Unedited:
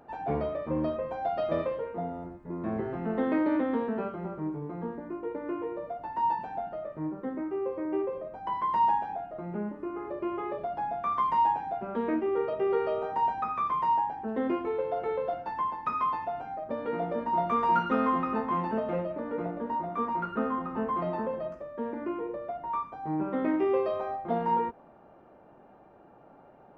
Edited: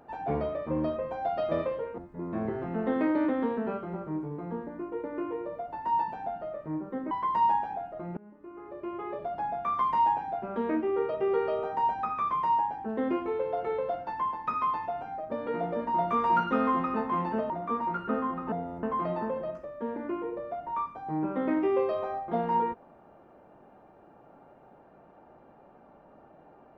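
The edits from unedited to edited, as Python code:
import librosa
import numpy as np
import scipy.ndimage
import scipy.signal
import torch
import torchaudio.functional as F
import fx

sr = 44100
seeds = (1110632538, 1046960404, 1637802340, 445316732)

y = fx.edit(x, sr, fx.move(start_s=1.98, length_s=0.31, to_s=20.8),
    fx.cut(start_s=7.42, length_s=1.08),
    fx.fade_in_from(start_s=9.56, length_s=1.23, floor_db=-23.5),
    fx.cut(start_s=18.89, length_s=0.89), tone=tone)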